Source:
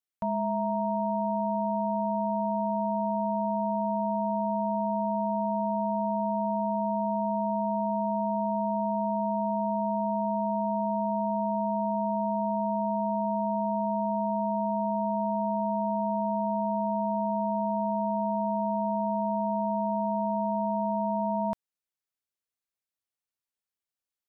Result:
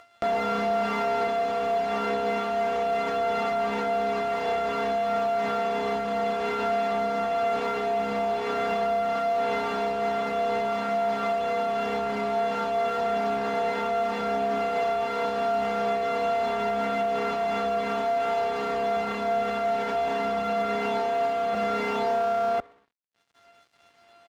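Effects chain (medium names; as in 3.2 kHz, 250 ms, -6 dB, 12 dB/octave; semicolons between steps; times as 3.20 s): sorted samples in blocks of 64 samples; chorus voices 4, 0.17 Hz, delay 13 ms, depth 4.3 ms; overdrive pedal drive 24 dB, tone 1 kHz, clips at -18.5 dBFS; delay 1051 ms -3.5 dB; upward compressor, threshold -36 dBFS; distance through air 91 m; peak limiter -27.5 dBFS, peak gain reduction 11 dB; peaking EQ 800 Hz +3 dB 0.49 oct; spring tank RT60 1.5 s, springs 60 ms, chirp 35 ms, DRR 18.5 dB; crossover distortion -56.5 dBFS; high-pass 65 Hz; trim +7.5 dB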